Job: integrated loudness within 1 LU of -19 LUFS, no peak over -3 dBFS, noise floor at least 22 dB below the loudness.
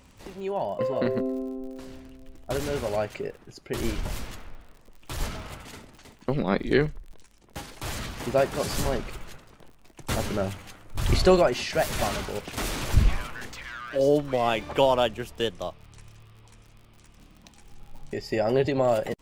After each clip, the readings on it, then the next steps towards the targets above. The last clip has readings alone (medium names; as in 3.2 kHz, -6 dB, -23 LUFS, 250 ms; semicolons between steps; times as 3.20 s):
tick rate 50 per s; loudness -27.5 LUFS; peak level -7.5 dBFS; loudness target -19.0 LUFS
-> de-click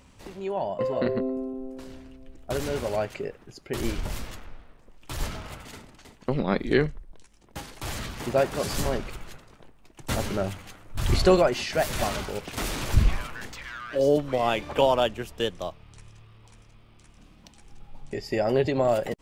tick rate 0.42 per s; loudness -27.5 LUFS; peak level -7.5 dBFS; loudness target -19.0 LUFS
-> trim +8.5 dB; peak limiter -3 dBFS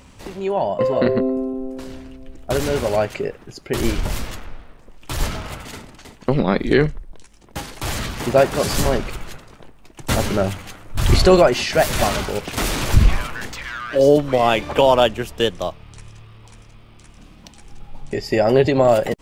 loudness -19.5 LUFS; peak level -3.0 dBFS; noise floor -46 dBFS